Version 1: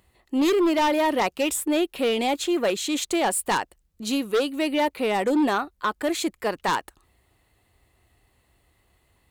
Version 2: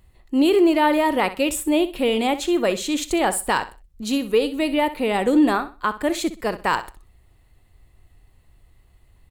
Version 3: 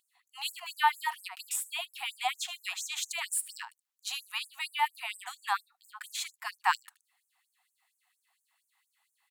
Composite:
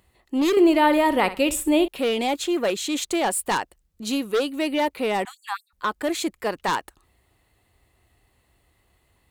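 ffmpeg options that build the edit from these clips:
-filter_complex "[0:a]asplit=3[s0][s1][s2];[s0]atrim=end=0.572[s3];[1:a]atrim=start=0.568:end=1.882[s4];[s1]atrim=start=1.878:end=5.252[s5];[2:a]atrim=start=5.248:end=5.732[s6];[s2]atrim=start=5.728[s7];[s3][s4]acrossfade=d=0.004:c1=hsin:c2=hsin[s8];[s8][s5]acrossfade=d=0.004:c1=hsin:c2=hsin[s9];[s9][s6]acrossfade=d=0.004:c1=hsin:c2=hsin[s10];[s10][s7]acrossfade=d=0.004:c1=hsin:c2=hsin"

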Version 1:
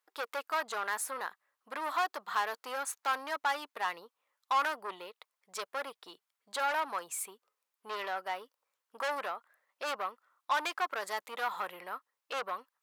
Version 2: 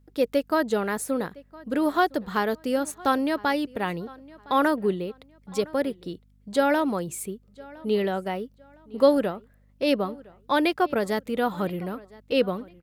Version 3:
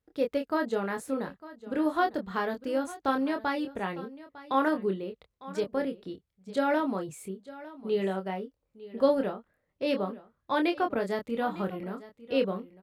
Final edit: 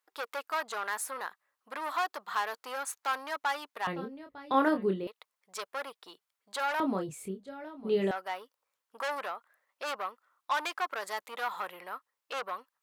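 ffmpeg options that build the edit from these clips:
-filter_complex "[2:a]asplit=2[s0][s1];[0:a]asplit=3[s2][s3][s4];[s2]atrim=end=3.872[s5];[s0]atrim=start=3.868:end=5.072[s6];[s3]atrim=start=5.068:end=6.802[s7];[s1]atrim=start=6.798:end=8.112[s8];[s4]atrim=start=8.108[s9];[s5][s6]acrossfade=d=0.004:c1=hsin:c2=hsin[s10];[s10][s7]acrossfade=d=0.004:c1=hsin:c2=hsin[s11];[s11][s8]acrossfade=d=0.004:c1=hsin:c2=hsin[s12];[s12][s9]acrossfade=d=0.004:c1=hsin:c2=hsin"

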